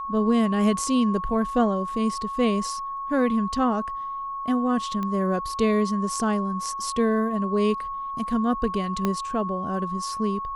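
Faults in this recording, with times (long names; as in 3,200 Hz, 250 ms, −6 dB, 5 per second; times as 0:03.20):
whistle 1,100 Hz −29 dBFS
0:05.03: click −18 dBFS
0:09.05: click −11 dBFS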